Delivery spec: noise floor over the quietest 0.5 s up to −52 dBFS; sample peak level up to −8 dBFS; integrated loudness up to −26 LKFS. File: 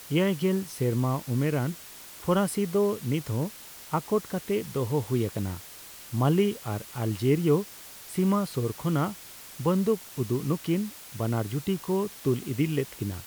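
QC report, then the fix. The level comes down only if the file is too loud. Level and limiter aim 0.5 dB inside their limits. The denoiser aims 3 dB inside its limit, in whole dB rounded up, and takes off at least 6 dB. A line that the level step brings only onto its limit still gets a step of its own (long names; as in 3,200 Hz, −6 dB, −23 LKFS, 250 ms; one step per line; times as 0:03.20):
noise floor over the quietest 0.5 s −46 dBFS: out of spec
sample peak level −12.5 dBFS: in spec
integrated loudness −28.0 LKFS: in spec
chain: broadband denoise 9 dB, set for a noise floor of −46 dBFS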